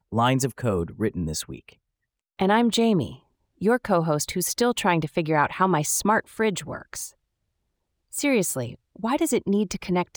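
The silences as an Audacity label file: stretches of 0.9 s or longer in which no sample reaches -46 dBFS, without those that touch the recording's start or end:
7.100000	8.120000	silence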